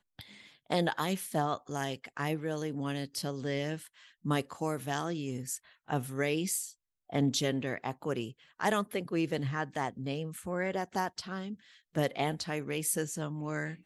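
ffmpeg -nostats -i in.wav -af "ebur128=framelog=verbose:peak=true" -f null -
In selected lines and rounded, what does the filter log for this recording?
Integrated loudness:
  I:         -34.2 LUFS
  Threshold: -44.4 LUFS
Loudness range:
  LRA:         2.4 LU
  Threshold: -54.4 LUFS
  LRA low:   -35.6 LUFS
  LRA high:  -33.1 LUFS
True peak:
  Peak:      -17.4 dBFS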